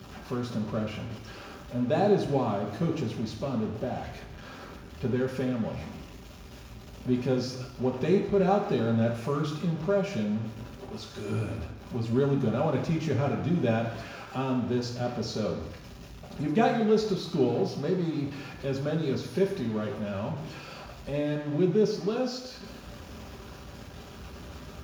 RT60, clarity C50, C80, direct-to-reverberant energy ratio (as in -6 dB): 1.1 s, 6.5 dB, 8.5 dB, -2.0 dB